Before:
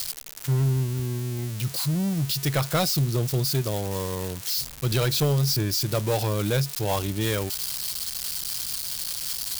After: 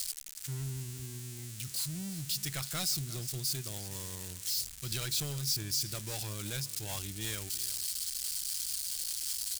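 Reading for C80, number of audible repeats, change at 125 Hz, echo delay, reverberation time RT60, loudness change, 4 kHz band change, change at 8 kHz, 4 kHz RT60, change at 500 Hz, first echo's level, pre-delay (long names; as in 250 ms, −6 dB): no reverb audible, 1, −15.5 dB, 354 ms, no reverb audible, −9.0 dB, −6.5 dB, −3.0 dB, no reverb audible, −20.5 dB, −16.5 dB, no reverb audible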